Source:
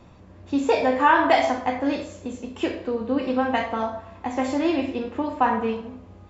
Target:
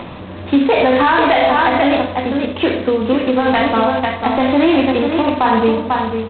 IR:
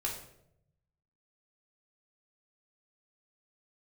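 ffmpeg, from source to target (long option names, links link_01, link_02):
-filter_complex "[0:a]asettb=1/sr,asplit=3[link_01][link_02][link_03];[link_01]atrim=end=5.194[link_04];[link_02]atrim=start=5.19:end=5.9,asetpts=PTS-STARTPTS,afade=type=in:duration=0.004:curve=qsin,afade=type=out:start_time=0.706:duration=0.004:curve=qsin,lowpass=2100[link_05];[link_03]atrim=start=5.896[link_06];[link_04][link_05]acrossfade=duration=0.004:curve1=hsin:curve2=qsin[link_07];[link_07][link_06]acrossfade=duration=0.004:curve1=qsin:curve2=hsin,bandreject=frequency=60:width_type=h:width=6,bandreject=frequency=120:width_type=h:width=6,bandreject=frequency=180:width_type=h:width=6,bandreject=frequency=240:width_type=h:width=6,bandreject=frequency=300:width_type=h:width=6,bandreject=frequency=360:width_type=h:width=6,bandreject=frequency=420:width_type=h:width=6,aecho=1:1:494:0.398,acrossover=split=130[link_08][link_09];[link_09]acompressor=mode=upward:threshold=-35dB:ratio=2.5[link_10];[link_08][link_10]amix=inputs=2:normalize=0,asplit=3[link_11][link_12][link_13];[link_11]afade=type=out:start_time=1.22:duration=0.02[link_14];[link_12]asubboost=boost=9:cutoff=50,afade=type=in:start_time=1.22:duration=0.02,afade=type=out:start_time=2.03:duration=0.02[link_15];[link_13]afade=type=in:start_time=2.03:duration=0.02[link_16];[link_14][link_15][link_16]amix=inputs=3:normalize=0,asplit=3[link_17][link_18][link_19];[link_17]afade=type=out:start_time=2.89:duration=0.02[link_20];[link_18]acompressor=threshold=-23dB:ratio=20,afade=type=in:start_time=2.89:duration=0.02,afade=type=out:start_time=3.45:duration=0.02[link_21];[link_19]afade=type=in:start_time=3.45:duration=0.02[link_22];[link_20][link_21][link_22]amix=inputs=3:normalize=0,alimiter=level_in=16dB:limit=-1dB:release=50:level=0:latency=1,volume=-3.5dB" -ar 8000 -c:a adpcm_g726 -b:a 16k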